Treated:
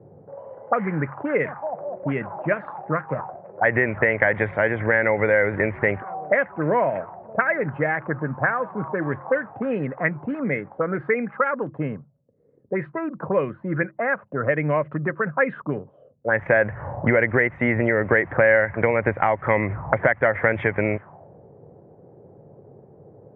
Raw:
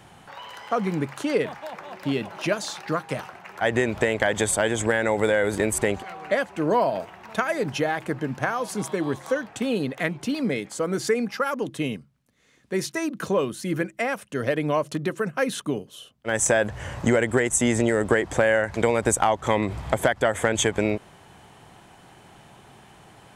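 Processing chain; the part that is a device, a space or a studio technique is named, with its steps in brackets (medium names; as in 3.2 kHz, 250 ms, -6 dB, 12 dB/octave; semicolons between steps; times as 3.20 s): envelope filter bass rig (touch-sensitive low-pass 430–2100 Hz up, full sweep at -20.5 dBFS; cabinet simulation 74–2200 Hz, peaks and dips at 100 Hz +8 dB, 150 Hz +7 dB, 550 Hz +5 dB); trim -2 dB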